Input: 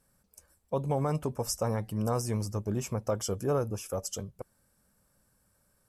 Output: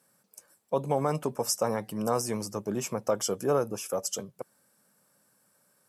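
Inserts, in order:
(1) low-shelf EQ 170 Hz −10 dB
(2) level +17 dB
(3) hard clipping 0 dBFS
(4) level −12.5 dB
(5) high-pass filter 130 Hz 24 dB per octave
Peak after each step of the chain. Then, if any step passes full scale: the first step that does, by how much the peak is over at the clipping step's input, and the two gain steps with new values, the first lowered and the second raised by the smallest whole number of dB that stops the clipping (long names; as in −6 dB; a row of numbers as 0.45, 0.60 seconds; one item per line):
−19.0, −2.0, −2.0, −14.5, −14.0 dBFS
no step passes full scale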